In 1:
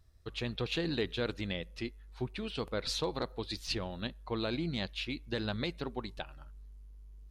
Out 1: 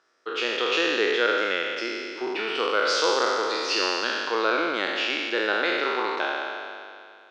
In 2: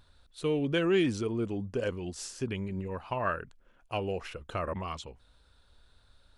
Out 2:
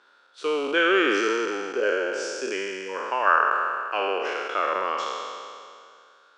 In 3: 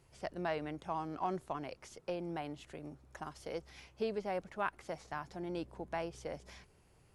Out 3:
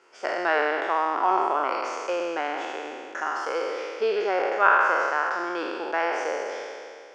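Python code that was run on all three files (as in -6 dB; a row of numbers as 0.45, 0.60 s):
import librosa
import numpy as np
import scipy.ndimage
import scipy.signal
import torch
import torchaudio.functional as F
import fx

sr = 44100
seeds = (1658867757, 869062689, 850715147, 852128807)

y = fx.spec_trails(x, sr, decay_s=2.33)
y = fx.cabinet(y, sr, low_hz=370.0, low_slope=24, high_hz=6200.0, hz=(660.0, 1400.0, 4000.0), db=(-4, 9, -9))
y = y * 10.0 ** (-26 / 20.0) / np.sqrt(np.mean(np.square(y)))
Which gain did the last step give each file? +9.0, +5.0, +11.0 dB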